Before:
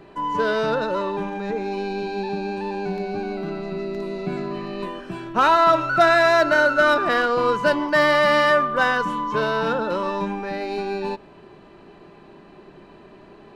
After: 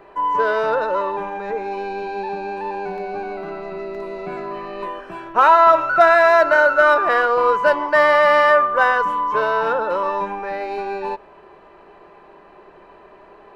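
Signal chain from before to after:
octave-band graphic EQ 125/250/500/1,000/2,000/4,000/8,000 Hz −9/−8/+5/+6/+3/−5/−4 dB
level −1 dB

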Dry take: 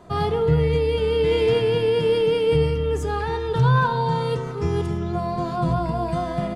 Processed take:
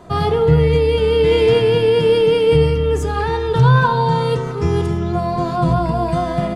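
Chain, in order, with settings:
hum removal 206.8 Hz, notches 27
level +6 dB

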